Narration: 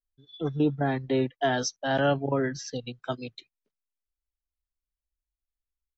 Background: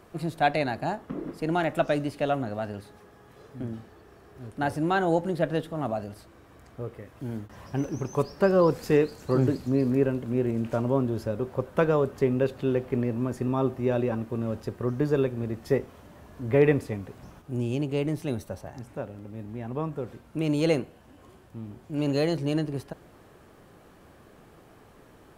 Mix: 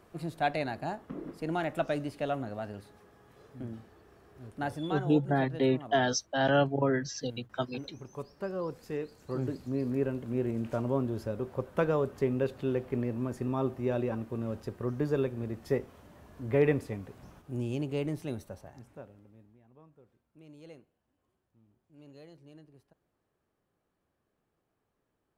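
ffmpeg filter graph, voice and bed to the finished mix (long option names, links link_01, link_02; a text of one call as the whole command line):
ffmpeg -i stem1.wav -i stem2.wav -filter_complex "[0:a]adelay=4500,volume=-1dB[link_01];[1:a]volume=3.5dB,afade=type=out:start_time=4.61:duration=0.48:silence=0.375837,afade=type=in:start_time=8.95:duration=1.44:silence=0.334965,afade=type=out:start_time=18.04:duration=1.56:silence=0.0794328[link_02];[link_01][link_02]amix=inputs=2:normalize=0" out.wav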